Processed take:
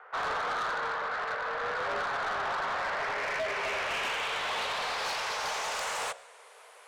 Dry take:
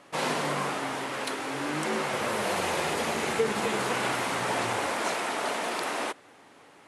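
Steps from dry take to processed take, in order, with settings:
Butterworth high-pass 200 Hz 48 dB per octave
mains-hum notches 60/120/180/240/300/360/420/480/540 Hz
in parallel at 0 dB: speech leveller 2 s
on the sum: log-companded quantiser 6 bits
low-pass filter sweep 1,300 Hz → 10,000 Hz, 0:02.65–0:06.56
frequency shifter +190 Hz
soft clipping −22 dBFS, distortion −10 dB
on a send at −23 dB: convolution reverb RT60 0.35 s, pre-delay 116 ms
on the sum: level −6.5 dB

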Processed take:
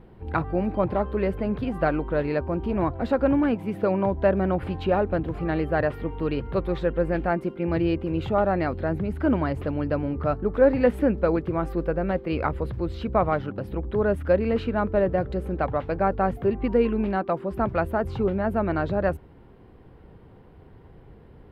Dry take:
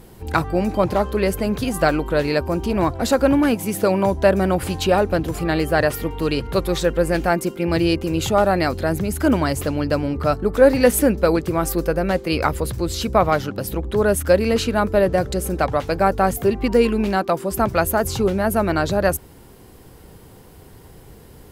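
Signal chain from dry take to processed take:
high-frequency loss of the air 480 metres
level −4 dB

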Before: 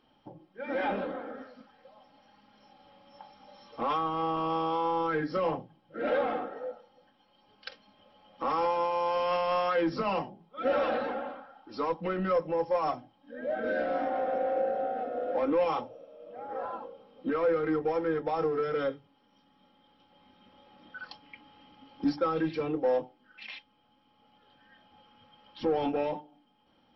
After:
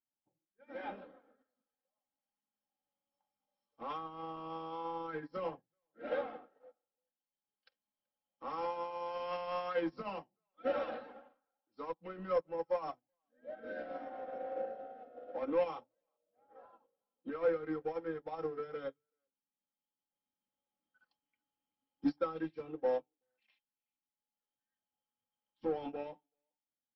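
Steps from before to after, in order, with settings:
far-end echo of a speakerphone 380 ms, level −21 dB
expander for the loud parts 2.5 to 1, over −46 dBFS
level −3 dB

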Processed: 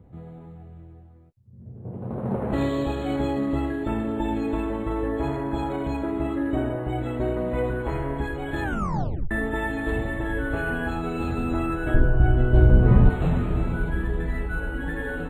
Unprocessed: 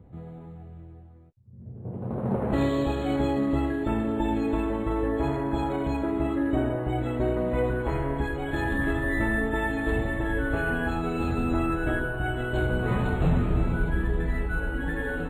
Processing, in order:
0:08.63: tape stop 0.68 s
0:11.94–0:13.10: spectral tilt −3.5 dB per octave

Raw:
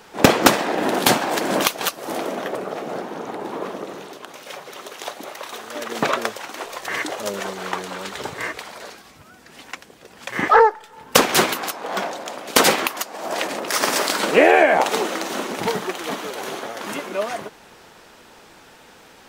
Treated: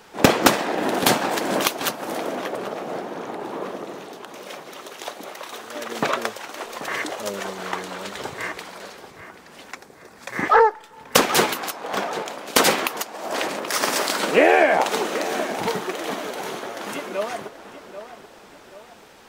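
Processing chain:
0:09.71–0:10.45: parametric band 3,000 Hz −12 dB 0.26 octaves
on a send: tape delay 784 ms, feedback 48%, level −11 dB, low-pass 2,100 Hz
on the sum: level −2 dB

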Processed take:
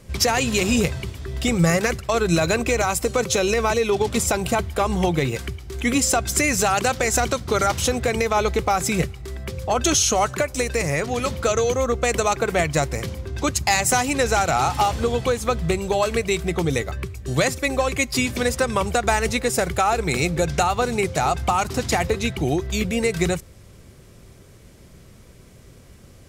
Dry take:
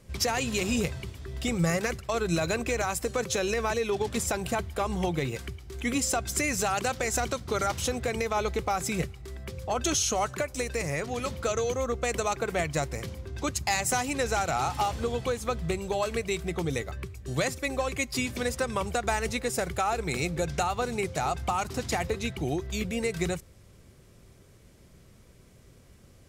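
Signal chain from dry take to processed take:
0:02.61–0:04.62: notch filter 1,700 Hz, Q 8.9
level +8 dB

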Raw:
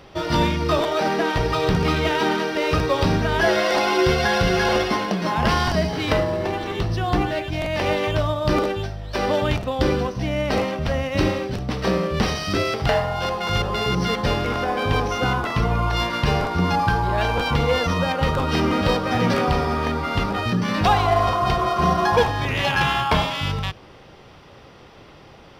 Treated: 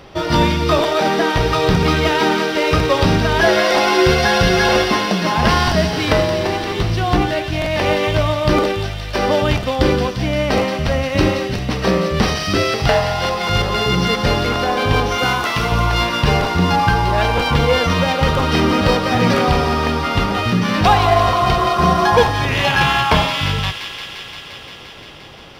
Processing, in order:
0:15.18–0:15.72: spectral tilt +2 dB per octave
on a send: delay with a high-pass on its return 174 ms, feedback 82%, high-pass 2,300 Hz, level −7 dB
on the sum: level +5 dB

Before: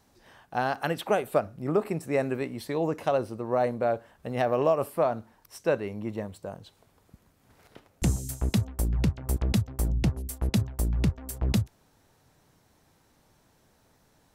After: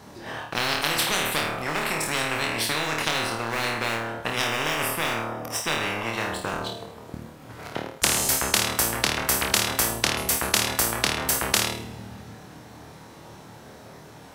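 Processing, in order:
high-pass filter 95 Hz
high-shelf EQ 5,200 Hz −9 dB
leveller curve on the samples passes 1
0:04.30–0:06.06: Butterworth band-reject 4,200 Hz, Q 8
flutter between parallel walls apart 4.5 metres, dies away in 0.43 s
coupled-rooms reverb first 0.67 s, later 2.4 s, from −18 dB, DRR 15 dB
every bin compressed towards the loudest bin 10 to 1
level +5.5 dB

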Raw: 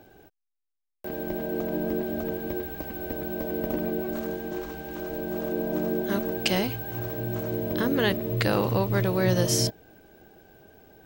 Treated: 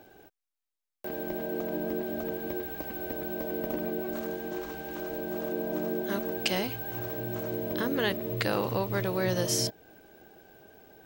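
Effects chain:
low-shelf EQ 200 Hz −7.5 dB
in parallel at −2.5 dB: downward compressor, threshold −34 dBFS, peak gain reduction 13 dB
on the sum: level −4.5 dB

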